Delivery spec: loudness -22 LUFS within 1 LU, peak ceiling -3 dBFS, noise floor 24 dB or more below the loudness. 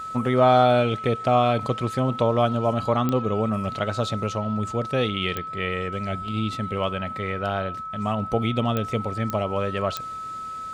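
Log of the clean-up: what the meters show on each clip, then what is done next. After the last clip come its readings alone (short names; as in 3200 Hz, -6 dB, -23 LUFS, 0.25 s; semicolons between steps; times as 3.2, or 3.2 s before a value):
clicks 5; steady tone 1300 Hz; tone level -31 dBFS; loudness -24.5 LUFS; peak -7.0 dBFS; loudness target -22.0 LUFS
-> de-click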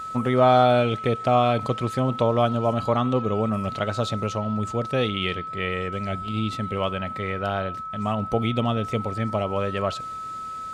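clicks 0; steady tone 1300 Hz; tone level -31 dBFS
-> notch 1300 Hz, Q 30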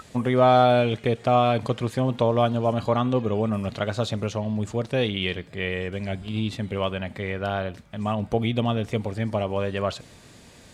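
steady tone none; loudness -24.5 LUFS; peak -7.5 dBFS; loudness target -22.0 LUFS
-> gain +2.5 dB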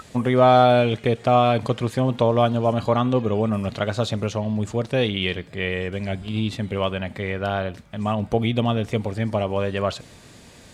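loudness -22.0 LUFS; peak -5.0 dBFS; noise floor -47 dBFS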